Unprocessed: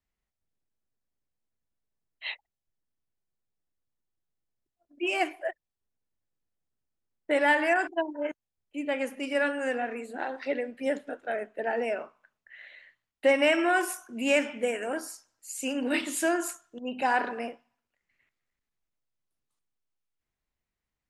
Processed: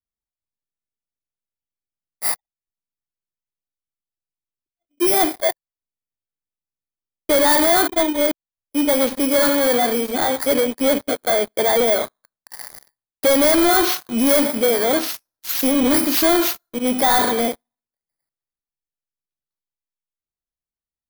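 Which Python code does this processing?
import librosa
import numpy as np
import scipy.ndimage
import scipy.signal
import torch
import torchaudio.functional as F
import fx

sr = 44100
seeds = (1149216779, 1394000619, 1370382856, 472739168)

y = fx.bit_reversed(x, sr, seeds[0], block=16)
y = fx.dynamic_eq(y, sr, hz=7600.0, q=0.83, threshold_db=-45.0, ratio=4.0, max_db=-4)
y = fx.leveller(y, sr, passes=5)
y = F.gain(torch.from_numpy(y), -1.0).numpy()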